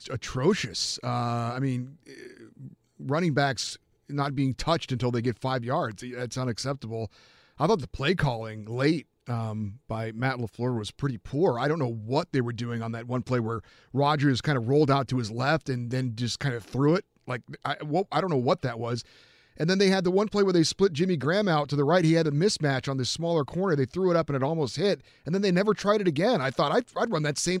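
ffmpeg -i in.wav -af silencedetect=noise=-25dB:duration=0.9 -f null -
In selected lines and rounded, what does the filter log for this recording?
silence_start: 1.79
silence_end: 3.09 | silence_duration: 1.30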